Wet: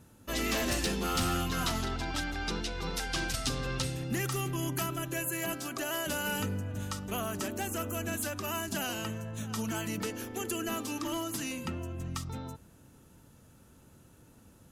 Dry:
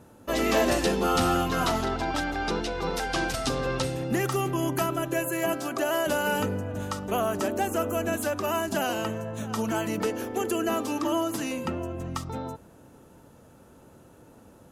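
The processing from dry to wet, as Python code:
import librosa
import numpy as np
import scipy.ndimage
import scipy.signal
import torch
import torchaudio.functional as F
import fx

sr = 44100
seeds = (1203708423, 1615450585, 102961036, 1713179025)

y = np.clip(10.0 ** (19.0 / 20.0) * x, -1.0, 1.0) / 10.0 ** (19.0 / 20.0)
y = fx.peak_eq(y, sr, hz=600.0, db=-11.5, octaves=2.6)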